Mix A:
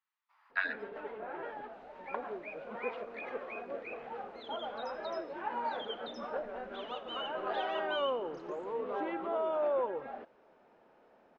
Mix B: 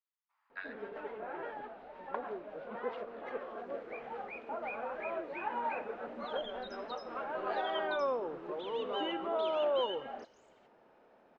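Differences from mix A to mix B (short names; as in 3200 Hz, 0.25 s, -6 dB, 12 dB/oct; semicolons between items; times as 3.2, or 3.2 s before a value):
speech -11.5 dB; second sound: entry +1.85 s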